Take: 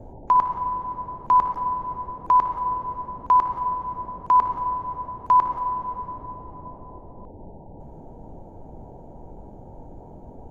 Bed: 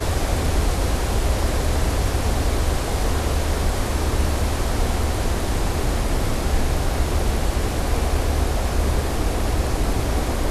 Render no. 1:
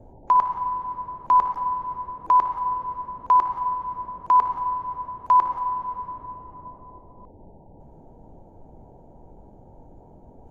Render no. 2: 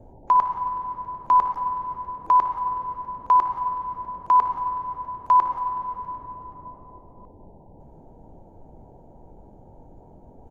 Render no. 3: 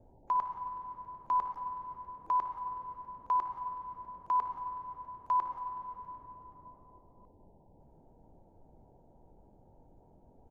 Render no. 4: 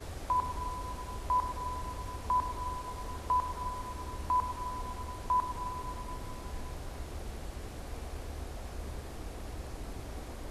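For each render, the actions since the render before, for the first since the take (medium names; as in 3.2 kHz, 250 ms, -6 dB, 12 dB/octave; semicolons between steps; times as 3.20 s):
noise print and reduce 6 dB
feedback delay 374 ms, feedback 44%, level -20.5 dB
trim -12.5 dB
add bed -20.5 dB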